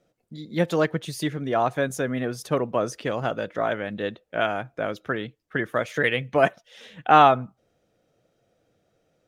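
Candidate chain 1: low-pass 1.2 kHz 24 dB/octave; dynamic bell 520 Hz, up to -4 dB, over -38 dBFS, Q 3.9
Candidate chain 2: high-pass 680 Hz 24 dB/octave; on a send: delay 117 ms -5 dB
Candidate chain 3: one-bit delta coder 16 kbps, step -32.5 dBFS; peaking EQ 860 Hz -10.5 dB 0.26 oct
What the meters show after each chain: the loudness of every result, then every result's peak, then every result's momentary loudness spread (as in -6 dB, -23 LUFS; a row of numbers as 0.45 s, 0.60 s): -26.5 LUFS, -26.0 LUFS, -29.5 LUFS; -5.0 dBFS, -4.0 dBFS, -11.0 dBFS; 13 LU, 15 LU, 14 LU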